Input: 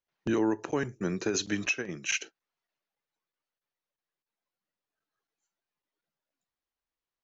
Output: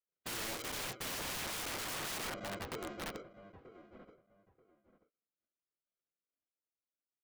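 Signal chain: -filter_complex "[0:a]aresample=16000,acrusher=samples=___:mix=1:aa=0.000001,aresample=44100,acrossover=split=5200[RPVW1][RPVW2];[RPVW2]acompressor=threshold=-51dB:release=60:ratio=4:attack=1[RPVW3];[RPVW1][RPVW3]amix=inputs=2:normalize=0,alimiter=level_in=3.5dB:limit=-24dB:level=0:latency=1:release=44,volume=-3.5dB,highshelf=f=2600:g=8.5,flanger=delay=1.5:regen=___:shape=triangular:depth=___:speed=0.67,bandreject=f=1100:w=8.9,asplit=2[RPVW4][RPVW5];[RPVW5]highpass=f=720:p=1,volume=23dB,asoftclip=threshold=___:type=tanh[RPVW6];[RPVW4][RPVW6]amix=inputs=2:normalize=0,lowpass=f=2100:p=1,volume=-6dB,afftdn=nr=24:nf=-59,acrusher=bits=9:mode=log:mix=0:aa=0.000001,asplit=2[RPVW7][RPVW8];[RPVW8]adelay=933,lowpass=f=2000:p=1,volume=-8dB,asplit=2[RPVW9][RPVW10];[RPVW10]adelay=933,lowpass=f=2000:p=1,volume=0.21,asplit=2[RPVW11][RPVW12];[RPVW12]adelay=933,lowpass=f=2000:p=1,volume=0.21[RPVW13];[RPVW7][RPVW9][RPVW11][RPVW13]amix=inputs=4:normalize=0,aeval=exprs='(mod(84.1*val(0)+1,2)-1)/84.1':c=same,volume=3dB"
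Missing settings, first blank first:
18, -47, 2.6, -25.5dB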